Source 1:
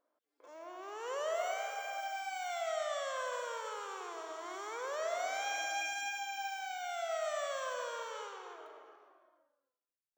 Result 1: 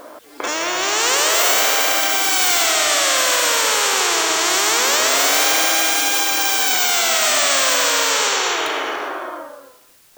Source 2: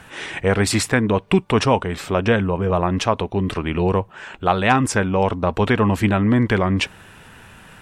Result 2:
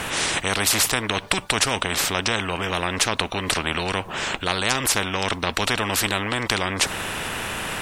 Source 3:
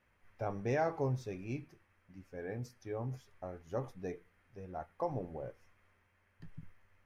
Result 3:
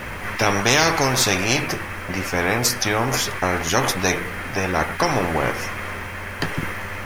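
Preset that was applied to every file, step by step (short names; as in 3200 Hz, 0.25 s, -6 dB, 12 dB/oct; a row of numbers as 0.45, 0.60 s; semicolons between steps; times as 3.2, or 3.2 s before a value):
spectral compressor 4:1; normalise peaks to -1.5 dBFS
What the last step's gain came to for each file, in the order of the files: +22.5, 0.0, +21.5 dB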